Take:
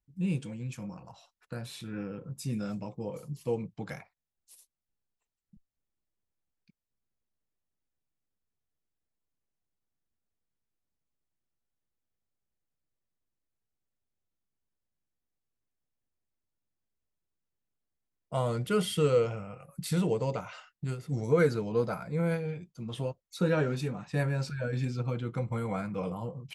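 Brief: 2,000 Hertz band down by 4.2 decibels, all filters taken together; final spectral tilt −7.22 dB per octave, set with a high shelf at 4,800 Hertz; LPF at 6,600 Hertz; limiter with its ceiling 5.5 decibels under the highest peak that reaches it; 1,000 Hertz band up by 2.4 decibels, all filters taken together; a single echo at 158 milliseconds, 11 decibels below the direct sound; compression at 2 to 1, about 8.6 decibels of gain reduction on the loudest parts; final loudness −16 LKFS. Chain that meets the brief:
low-pass filter 6,600 Hz
parametric band 1,000 Hz +6 dB
parametric band 2,000 Hz −8.5 dB
high-shelf EQ 4,800 Hz −5.5 dB
downward compressor 2 to 1, threshold −35 dBFS
brickwall limiter −26.5 dBFS
single-tap delay 158 ms −11 dB
level +22 dB

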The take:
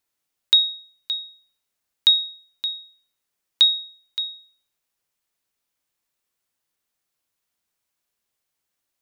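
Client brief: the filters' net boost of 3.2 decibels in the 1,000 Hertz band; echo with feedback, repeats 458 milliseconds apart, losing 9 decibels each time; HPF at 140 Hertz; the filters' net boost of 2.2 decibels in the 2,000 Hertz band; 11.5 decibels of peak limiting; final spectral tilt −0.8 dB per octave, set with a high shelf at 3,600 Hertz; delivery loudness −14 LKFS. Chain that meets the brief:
high-pass filter 140 Hz
parametric band 1,000 Hz +3.5 dB
parametric band 2,000 Hz +3.5 dB
high-shelf EQ 3,600 Hz −4.5 dB
brickwall limiter −18 dBFS
repeating echo 458 ms, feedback 35%, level −9 dB
level +14 dB

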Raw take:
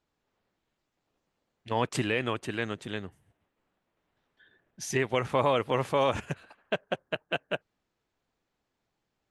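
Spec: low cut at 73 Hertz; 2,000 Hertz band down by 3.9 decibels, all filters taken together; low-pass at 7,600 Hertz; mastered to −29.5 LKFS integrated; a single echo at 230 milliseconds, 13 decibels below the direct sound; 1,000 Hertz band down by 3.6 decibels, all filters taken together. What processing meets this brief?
high-pass filter 73 Hz
low-pass filter 7,600 Hz
parametric band 1,000 Hz −3.5 dB
parametric band 2,000 Hz −4 dB
single-tap delay 230 ms −13 dB
level +2.5 dB

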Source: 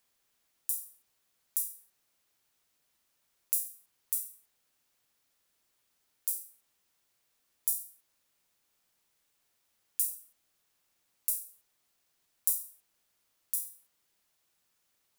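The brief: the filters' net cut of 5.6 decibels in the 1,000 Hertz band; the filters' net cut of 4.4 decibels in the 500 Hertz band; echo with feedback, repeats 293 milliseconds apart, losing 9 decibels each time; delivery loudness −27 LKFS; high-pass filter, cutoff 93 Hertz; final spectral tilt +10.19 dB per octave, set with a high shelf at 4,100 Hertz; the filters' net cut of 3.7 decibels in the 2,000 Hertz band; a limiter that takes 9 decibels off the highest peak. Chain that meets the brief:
high-pass filter 93 Hz
parametric band 500 Hz −4 dB
parametric band 1,000 Hz −5 dB
parametric band 2,000 Hz −5 dB
high-shelf EQ 4,100 Hz +3.5 dB
brickwall limiter −8.5 dBFS
repeating echo 293 ms, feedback 35%, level −9 dB
level +7.5 dB

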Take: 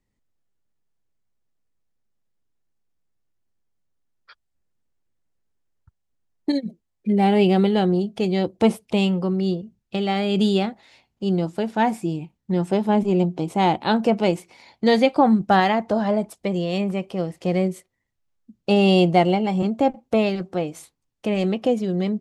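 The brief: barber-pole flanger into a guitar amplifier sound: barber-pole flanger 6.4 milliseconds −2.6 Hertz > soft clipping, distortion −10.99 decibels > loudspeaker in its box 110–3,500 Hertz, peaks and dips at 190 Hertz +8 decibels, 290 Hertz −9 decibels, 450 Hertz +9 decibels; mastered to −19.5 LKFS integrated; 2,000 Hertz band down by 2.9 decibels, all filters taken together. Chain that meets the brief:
parametric band 2,000 Hz −3.5 dB
barber-pole flanger 6.4 ms −2.6 Hz
soft clipping −20.5 dBFS
loudspeaker in its box 110–3,500 Hz, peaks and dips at 190 Hz +8 dB, 290 Hz −9 dB, 450 Hz +9 dB
level +5 dB

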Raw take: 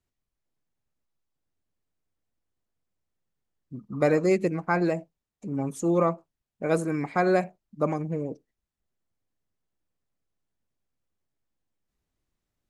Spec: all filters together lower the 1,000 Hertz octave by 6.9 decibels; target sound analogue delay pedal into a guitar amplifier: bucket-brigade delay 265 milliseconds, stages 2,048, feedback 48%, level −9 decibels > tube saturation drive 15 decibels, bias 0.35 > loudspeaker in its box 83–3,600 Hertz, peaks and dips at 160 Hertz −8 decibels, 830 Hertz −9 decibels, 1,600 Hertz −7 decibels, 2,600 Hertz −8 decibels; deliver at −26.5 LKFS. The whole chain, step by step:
parametric band 1,000 Hz −4 dB
bucket-brigade delay 265 ms, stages 2,048, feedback 48%, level −9 dB
tube saturation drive 15 dB, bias 0.35
loudspeaker in its box 83–3,600 Hz, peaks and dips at 160 Hz −8 dB, 830 Hz −9 dB, 1,600 Hz −7 dB, 2,600 Hz −8 dB
level +4 dB

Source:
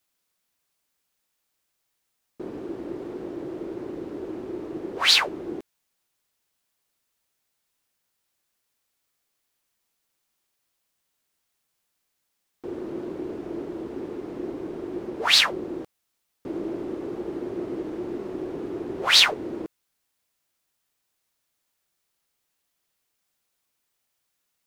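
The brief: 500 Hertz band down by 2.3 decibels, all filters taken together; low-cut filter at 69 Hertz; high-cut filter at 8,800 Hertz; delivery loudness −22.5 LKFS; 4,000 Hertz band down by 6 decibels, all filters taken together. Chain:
high-pass filter 69 Hz
low-pass filter 8,800 Hz
parametric band 500 Hz −3.5 dB
parametric band 4,000 Hz −7 dB
level +7.5 dB

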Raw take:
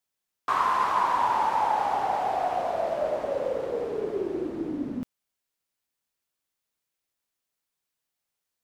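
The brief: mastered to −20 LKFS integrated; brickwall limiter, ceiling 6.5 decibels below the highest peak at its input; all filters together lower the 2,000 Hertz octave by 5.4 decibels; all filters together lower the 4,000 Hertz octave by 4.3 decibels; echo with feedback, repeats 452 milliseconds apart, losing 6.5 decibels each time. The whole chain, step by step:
parametric band 2,000 Hz −7 dB
parametric band 4,000 Hz −3 dB
brickwall limiter −19.5 dBFS
repeating echo 452 ms, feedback 47%, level −6.5 dB
level +8.5 dB

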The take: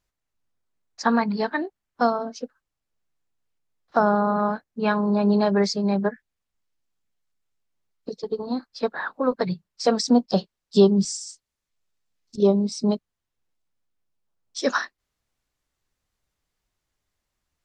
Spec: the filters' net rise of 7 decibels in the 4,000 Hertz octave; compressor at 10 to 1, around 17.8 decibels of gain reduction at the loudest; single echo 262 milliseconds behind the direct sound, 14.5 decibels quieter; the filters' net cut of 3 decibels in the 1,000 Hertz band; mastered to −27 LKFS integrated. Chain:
parametric band 1,000 Hz −4.5 dB
parametric band 4,000 Hz +9 dB
downward compressor 10 to 1, threshold −29 dBFS
single-tap delay 262 ms −14.5 dB
level +7 dB

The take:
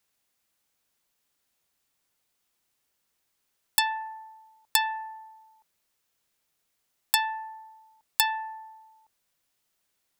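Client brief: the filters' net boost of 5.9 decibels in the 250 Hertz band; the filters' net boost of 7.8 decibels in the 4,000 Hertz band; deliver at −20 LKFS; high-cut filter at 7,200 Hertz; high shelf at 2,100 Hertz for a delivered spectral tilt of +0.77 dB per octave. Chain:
low-pass filter 7,200 Hz
parametric band 250 Hz +7.5 dB
high-shelf EQ 2,100 Hz +4.5 dB
parametric band 4,000 Hz +5.5 dB
level +4 dB

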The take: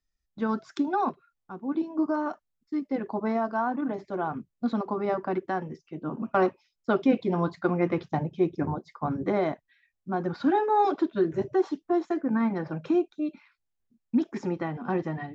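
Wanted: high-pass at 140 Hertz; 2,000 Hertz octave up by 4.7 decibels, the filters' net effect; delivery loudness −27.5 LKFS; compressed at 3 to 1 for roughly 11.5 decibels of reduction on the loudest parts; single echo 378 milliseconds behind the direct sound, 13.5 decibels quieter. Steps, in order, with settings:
high-pass filter 140 Hz
parametric band 2,000 Hz +6.5 dB
downward compressor 3 to 1, threshold −34 dBFS
single-tap delay 378 ms −13.5 dB
level +9 dB

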